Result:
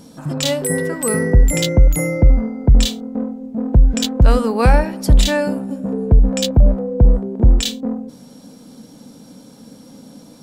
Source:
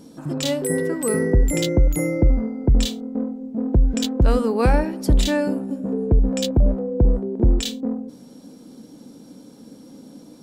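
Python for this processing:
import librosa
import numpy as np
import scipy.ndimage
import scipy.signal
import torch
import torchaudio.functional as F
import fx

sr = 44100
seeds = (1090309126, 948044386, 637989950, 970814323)

y = fx.peak_eq(x, sr, hz=340.0, db=-9.5, octaves=0.76)
y = y * 10.0 ** (6.0 / 20.0)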